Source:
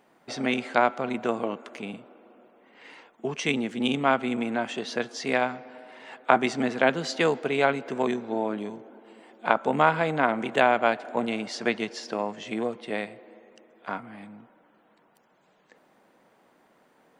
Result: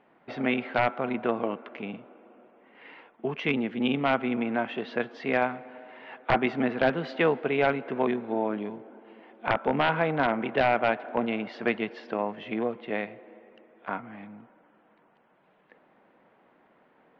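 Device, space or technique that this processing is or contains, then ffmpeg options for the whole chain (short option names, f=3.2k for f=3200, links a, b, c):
synthesiser wavefolder: -af "aeval=exprs='0.224*(abs(mod(val(0)/0.224+3,4)-2)-1)':c=same,lowpass=f=3k:w=0.5412,lowpass=f=3k:w=1.3066"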